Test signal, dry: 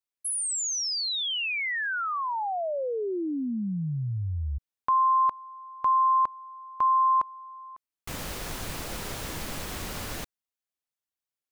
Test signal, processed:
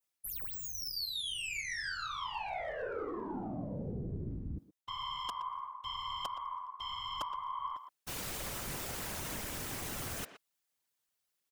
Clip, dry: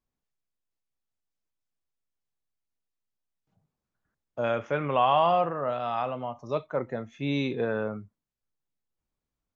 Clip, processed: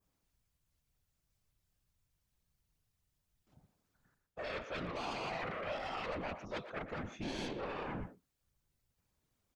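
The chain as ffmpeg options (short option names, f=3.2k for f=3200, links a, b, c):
-filter_complex "[0:a]areverse,acompressor=threshold=-36dB:ratio=8:attack=11:release=295:knee=6:detection=rms,areverse,adynamicequalizer=threshold=0.002:dfrequency=4100:dqfactor=1.4:tfrequency=4100:tqfactor=1.4:attack=5:release=100:ratio=0.375:range=3:mode=cutabove:tftype=bell,asplit=2[a][b];[b]asoftclip=type=hard:threshold=-39dB,volume=-10.5dB[c];[a][c]amix=inputs=2:normalize=0,highshelf=f=3k:g=3.5,aeval=exprs='0.0841*(cos(1*acos(clip(val(0)/0.0841,-1,1)))-cos(1*PI/2))+0.0376*(cos(7*acos(clip(val(0)/0.0841,-1,1)))-cos(7*PI/2))+0.00266*(cos(8*acos(clip(val(0)/0.0841,-1,1)))-cos(8*PI/2))':c=same,acontrast=51,afftfilt=real='hypot(re,im)*cos(2*PI*random(0))':imag='hypot(re,im)*sin(2*PI*random(1))':win_size=512:overlap=0.75,asplit=2[d][e];[e]adelay=120,highpass=300,lowpass=3.4k,asoftclip=type=hard:threshold=-30dB,volume=-10dB[f];[d][f]amix=inputs=2:normalize=0,volume=-3.5dB"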